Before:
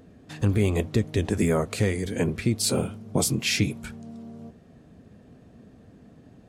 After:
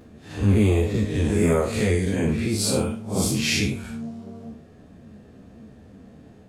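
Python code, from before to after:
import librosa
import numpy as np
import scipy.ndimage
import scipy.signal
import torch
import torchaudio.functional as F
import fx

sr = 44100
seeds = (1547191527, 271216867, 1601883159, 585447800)

y = fx.spec_blur(x, sr, span_ms=134.0)
y = fx.ensemble(y, sr)
y = y * librosa.db_to_amplitude(9.0)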